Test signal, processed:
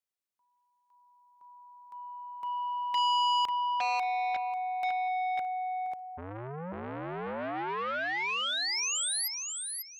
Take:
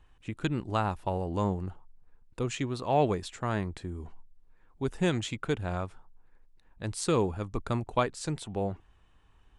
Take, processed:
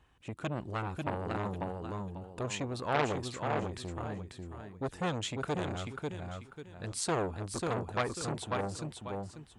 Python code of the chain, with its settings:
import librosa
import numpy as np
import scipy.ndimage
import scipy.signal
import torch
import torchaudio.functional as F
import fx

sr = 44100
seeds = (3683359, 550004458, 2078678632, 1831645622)

p1 = scipy.signal.sosfilt(scipy.signal.butter(2, 68.0, 'highpass', fs=sr, output='sos'), x)
p2 = p1 + fx.echo_feedback(p1, sr, ms=543, feedback_pct=26, wet_db=-5, dry=0)
y = fx.transformer_sat(p2, sr, knee_hz=1800.0)